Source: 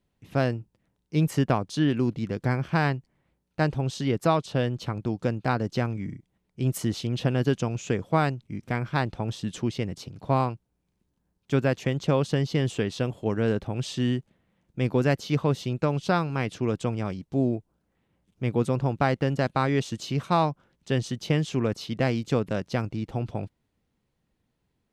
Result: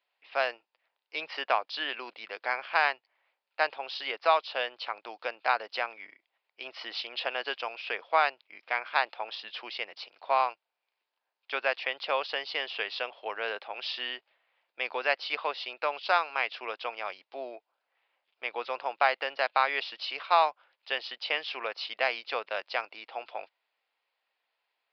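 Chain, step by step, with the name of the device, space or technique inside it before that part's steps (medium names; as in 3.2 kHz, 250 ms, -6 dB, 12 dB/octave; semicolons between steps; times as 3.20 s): musical greeting card (resampled via 11.025 kHz; high-pass 660 Hz 24 dB/octave; peaking EQ 2.5 kHz +5.5 dB 0.56 oct); trim +2 dB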